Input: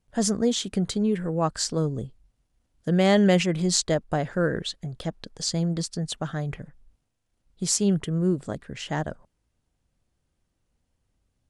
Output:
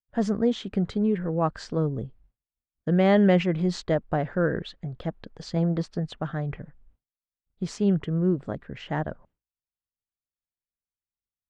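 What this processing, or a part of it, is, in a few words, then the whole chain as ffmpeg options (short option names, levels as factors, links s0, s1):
hearing-loss simulation: -filter_complex "[0:a]lowpass=2300,agate=range=0.0224:threshold=0.00251:ratio=3:detection=peak,asettb=1/sr,asplit=3[s0][s1][s2];[s0]atrim=end=5.564[s3];[s1]atrim=start=5.56:end=6,asetpts=PTS-STARTPTS,afade=t=in:d=0.004:c=qsin,afade=t=out:st=0.436:d=0.004:c=qsin,equalizer=f=790:t=o:w=2.6:g=5.5[s4];[s2]atrim=start=5.996[s5];[s3][s4]acrossfade=d=0.004:c1=hsin:c2=qsin[s6];[s6][s5]acrossfade=d=0.004:c1=qsin:c2=hsin"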